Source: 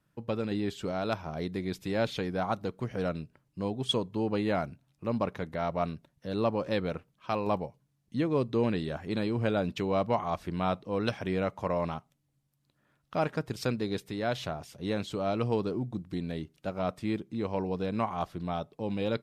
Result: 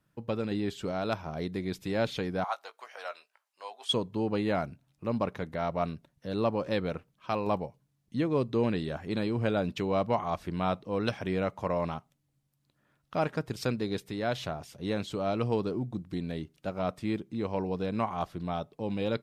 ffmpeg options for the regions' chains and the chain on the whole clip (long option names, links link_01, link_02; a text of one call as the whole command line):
ffmpeg -i in.wav -filter_complex "[0:a]asettb=1/sr,asplit=3[link_01][link_02][link_03];[link_01]atrim=end=2.444[link_04];[link_02]atrim=start=2.44:end=3.93,asetpts=PTS-STARTPTS,afade=type=in:duration=0.004:curve=qsin,afade=type=out:start_time=1.486:duration=0.004:curve=qsin,highpass=frequency=730:width=0.5412,highpass=frequency=730:width=1.3066,asplit=2[link_05][link_06];[link_06]adelay=18,volume=-10dB[link_07];[link_05][link_07]amix=inputs=2:normalize=0,atrim=end_sample=65709[link_08];[link_03]atrim=start=3.926[link_09];[link_04][link_08]acrossfade=duration=0.004:curve1=hsin:curve2=qsin[link_10];[link_10][link_09]acrossfade=duration=0.004:curve1=qsin:curve2=hsin" out.wav